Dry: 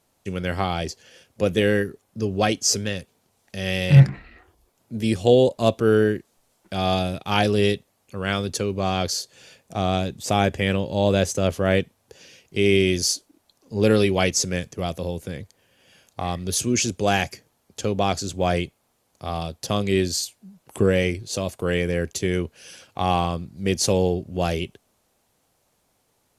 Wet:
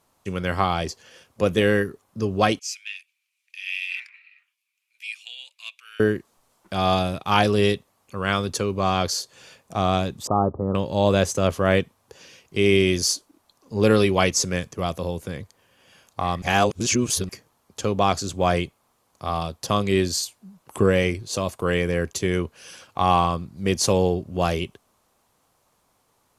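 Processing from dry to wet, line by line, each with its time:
2.59–6.00 s: ladder high-pass 2.3 kHz, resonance 80%
10.27–10.75 s: rippled Chebyshev low-pass 1.3 kHz, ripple 3 dB
16.42–17.29 s: reverse
whole clip: peaking EQ 1.1 kHz +8 dB 0.62 oct

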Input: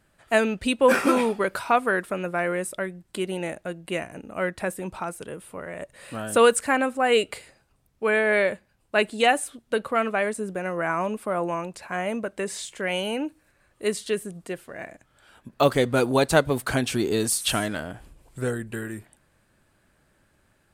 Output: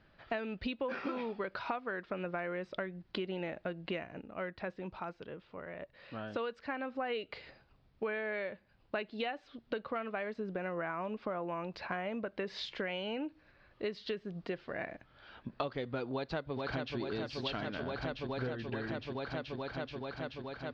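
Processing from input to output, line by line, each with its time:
3.97–7.20 s: dip -9.5 dB, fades 0.30 s
16.13–16.97 s: echo throw 430 ms, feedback 80%, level -6.5 dB
whole clip: steep low-pass 4.9 kHz 48 dB/octave; compression 12:1, threshold -34 dBFS

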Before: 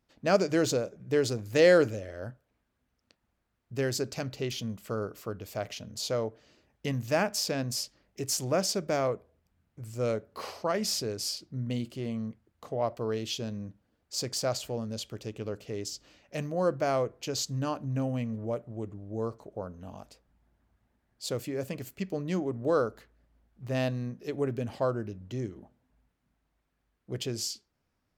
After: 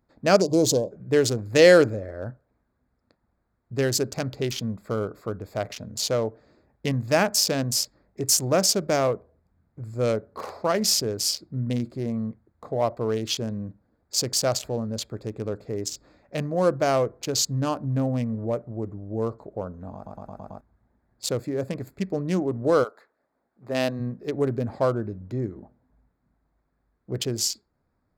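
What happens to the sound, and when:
0.41–0.91 s: spectral selection erased 1.1–3.1 kHz
19.95 s: stutter in place 0.11 s, 6 plays
22.83–23.99 s: high-pass 780 Hz -> 180 Hz
whole clip: local Wiener filter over 15 samples; treble shelf 4.6 kHz +7 dB; trim +6 dB

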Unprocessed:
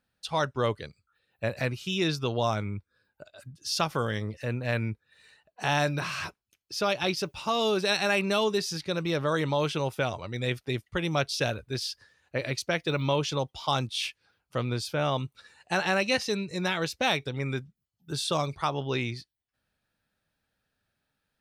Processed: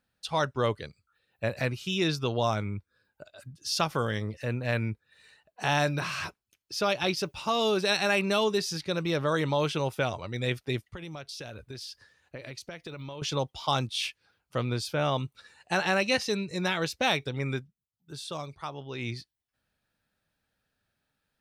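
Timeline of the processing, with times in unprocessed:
10.81–13.22 s: compression 8:1, threshold -37 dBFS
17.55–19.10 s: dip -9 dB, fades 0.13 s

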